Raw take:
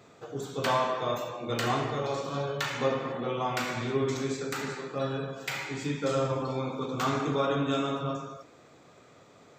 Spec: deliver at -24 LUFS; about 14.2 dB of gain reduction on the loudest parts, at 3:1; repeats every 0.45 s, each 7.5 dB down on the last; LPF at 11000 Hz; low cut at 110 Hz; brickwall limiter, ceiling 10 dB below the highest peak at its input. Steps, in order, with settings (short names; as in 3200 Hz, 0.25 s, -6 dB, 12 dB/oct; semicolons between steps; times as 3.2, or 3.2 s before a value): HPF 110 Hz; LPF 11000 Hz; compressor 3:1, threshold -43 dBFS; limiter -36.5 dBFS; feedback echo 0.45 s, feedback 42%, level -7.5 dB; gain +21 dB